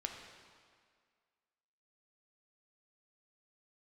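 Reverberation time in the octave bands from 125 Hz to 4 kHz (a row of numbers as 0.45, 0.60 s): 1.6, 1.9, 1.9, 2.0, 1.9, 1.6 s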